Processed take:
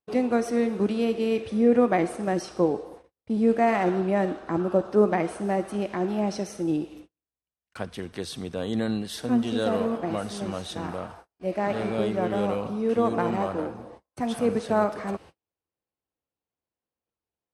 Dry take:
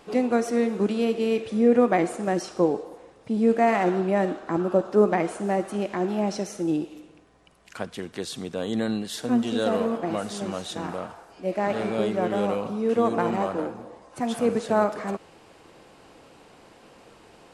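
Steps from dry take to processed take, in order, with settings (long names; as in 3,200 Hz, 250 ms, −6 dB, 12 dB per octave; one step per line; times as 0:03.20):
noise gate −44 dBFS, range −42 dB
parametric band 74 Hz +10.5 dB 1.1 octaves
notch filter 7,100 Hz, Q 6.7
level −1.5 dB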